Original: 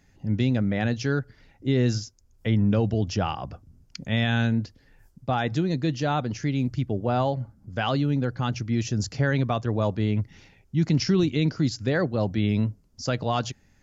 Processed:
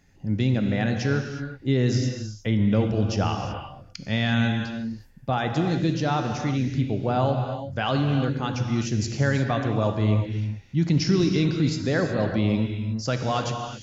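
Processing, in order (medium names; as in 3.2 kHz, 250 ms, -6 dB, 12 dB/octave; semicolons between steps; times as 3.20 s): gated-style reverb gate 390 ms flat, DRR 4 dB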